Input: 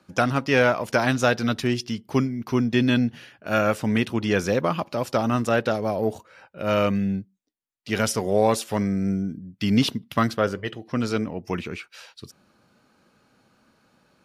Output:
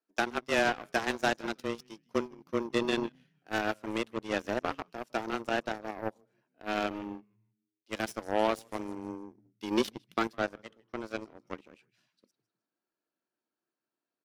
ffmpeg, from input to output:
-filter_complex "[0:a]asplit=5[s0][s1][s2][s3][s4];[s1]adelay=155,afreqshift=-100,volume=0.178[s5];[s2]adelay=310,afreqshift=-200,volume=0.075[s6];[s3]adelay=465,afreqshift=-300,volume=0.0313[s7];[s4]adelay=620,afreqshift=-400,volume=0.0132[s8];[s0][s5][s6][s7][s8]amix=inputs=5:normalize=0,afreqshift=110,aeval=exprs='0.501*(cos(1*acos(clip(val(0)/0.501,-1,1)))-cos(1*PI/2))+0.00794*(cos(3*acos(clip(val(0)/0.501,-1,1)))-cos(3*PI/2))+0.00398*(cos(4*acos(clip(val(0)/0.501,-1,1)))-cos(4*PI/2))+0.0631*(cos(7*acos(clip(val(0)/0.501,-1,1)))-cos(7*PI/2))':c=same,volume=0.422"

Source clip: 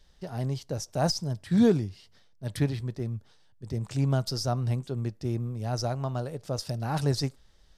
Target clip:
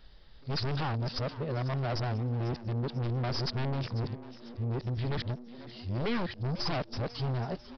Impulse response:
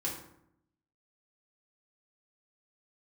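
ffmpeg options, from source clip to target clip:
-filter_complex "[0:a]areverse,aeval=exprs='0.282*(cos(1*acos(clip(val(0)/0.282,-1,1)))-cos(1*PI/2))+0.0891*(cos(3*acos(clip(val(0)/0.282,-1,1)))-cos(3*PI/2))+0.1*(cos(5*acos(clip(val(0)/0.282,-1,1)))-cos(5*PI/2))+0.0708*(cos(8*acos(clip(val(0)/0.282,-1,1)))-cos(8*PI/2))':c=same,aresample=11025,asoftclip=type=tanh:threshold=0.0422,aresample=44100,asplit=5[s0][s1][s2][s3][s4];[s1]adelay=495,afreqshift=120,volume=0.158[s5];[s2]adelay=990,afreqshift=240,volume=0.0668[s6];[s3]adelay=1485,afreqshift=360,volume=0.0279[s7];[s4]adelay=1980,afreqshift=480,volume=0.0117[s8];[s0][s5][s6][s7][s8]amix=inputs=5:normalize=0"

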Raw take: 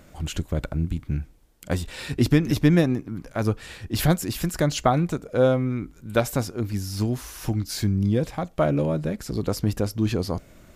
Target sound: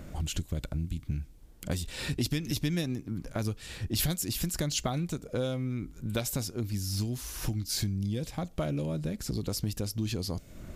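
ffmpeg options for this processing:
-filter_complex "[0:a]lowshelf=f=360:g=9,acrossover=split=2800[s0][s1];[s0]acompressor=threshold=0.0251:ratio=4[s2];[s2][s1]amix=inputs=2:normalize=0"

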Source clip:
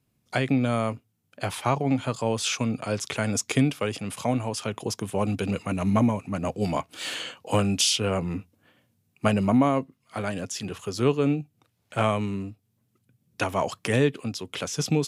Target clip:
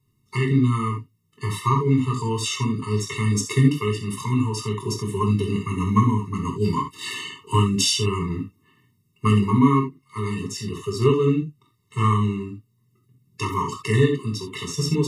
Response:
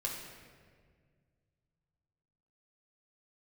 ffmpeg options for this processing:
-filter_complex "[1:a]atrim=start_sample=2205,atrim=end_sample=3969[s0];[0:a][s0]afir=irnorm=-1:irlink=0,afftfilt=real='re*eq(mod(floor(b*sr/1024/440),2),0)':imag='im*eq(mod(floor(b*sr/1024/440),2),0)':win_size=1024:overlap=0.75,volume=1.68"

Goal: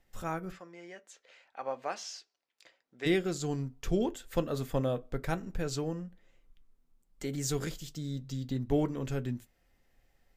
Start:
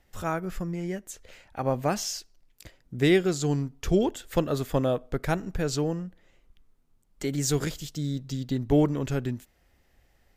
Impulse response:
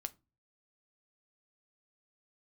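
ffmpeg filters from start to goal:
-filter_complex "[0:a]asplit=3[s0][s1][s2];[s0]afade=t=out:st=0.51:d=0.02[s3];[s1]highpass=580,lowpass=5200,afade=t=in:st=0.51:d=0.02,afade=t=out:st=3.05:d=0.02[s4];[s2]afade=t=in:st=3.05:d=0.02[s5];[s3][s4][s5]amix=inputs=3:normalize=0[s6];[1:a]atrim=start_sample=2205,atrim=end_sample=6615,asetrate=79380,aresample=44100[s7];[s6][s7]afir=irnorm=-1:irlink=0,volume=1.19"

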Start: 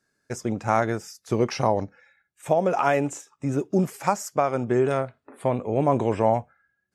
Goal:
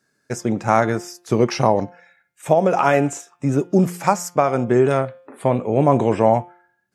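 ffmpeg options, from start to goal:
-af "lowshelf=f=100:t=q:w=1.5:g=-7,bandreject=f=175.9:t=h:w=4,bandreject=f=351.8:t=h:w=4,bandreject=f=527.7:t=h:w=4,bandreject=f=703.6:t=h:w=4,bandreject=f=879.5:t=h:w=4,bandreject=f=1055.4:t=h:w=4,bandreject=f=1231.3:t=h:w=4,bandreject=f=1407.2:t=h:w=4,bandreject=f=1583.1:t=h:w=4,bandreject=f=1759:t=h:w=4,bandreject=f=1934.9:t=h:w=4,bandreject=f=2110.8:t=h:w=4,bandreject=f=2286.7:t=h:w=4,bandreject=f=2462.6:t=h:w=4,bandreject=f=2638.5:t=h:w=4,bandreject=f=2814.4:t=h:w=4,bandreject=f=2990.3:t=h:w=4,bandreject=f=3166.2:t=h:w=4,bandreject=f=3342.1:t=h:w=4,bandreject=f=3518:t=h:w=4,volume=1.88"

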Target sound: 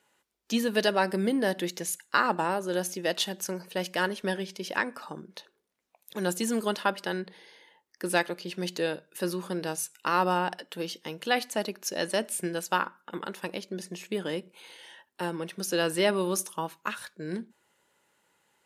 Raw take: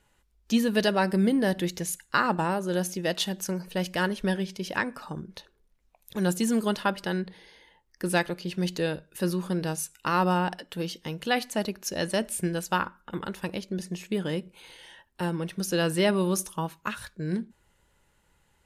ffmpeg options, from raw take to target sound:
-af "highpass=270"

